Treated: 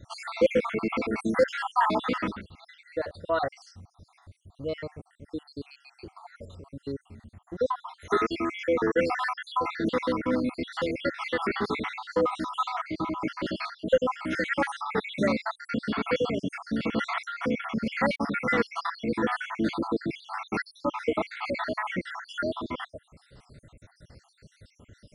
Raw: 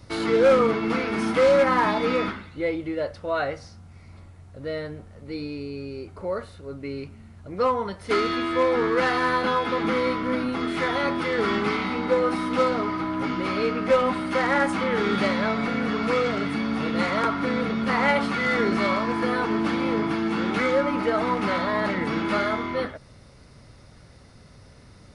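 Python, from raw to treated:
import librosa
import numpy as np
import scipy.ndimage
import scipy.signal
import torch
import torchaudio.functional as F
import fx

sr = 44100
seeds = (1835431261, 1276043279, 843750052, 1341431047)

y = fx.spec_dropout(x, sr, seeds[0], share_pct=69)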